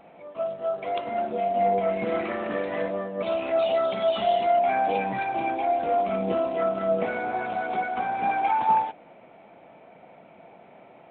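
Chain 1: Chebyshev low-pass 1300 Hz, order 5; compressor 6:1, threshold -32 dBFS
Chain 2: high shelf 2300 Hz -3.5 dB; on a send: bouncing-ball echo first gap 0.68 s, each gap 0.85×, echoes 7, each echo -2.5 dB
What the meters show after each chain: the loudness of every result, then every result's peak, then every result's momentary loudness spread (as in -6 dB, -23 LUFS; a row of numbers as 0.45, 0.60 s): -35.0, -23.5 LUFS; -23.5, -10.0 dBFS; 18, 8 LU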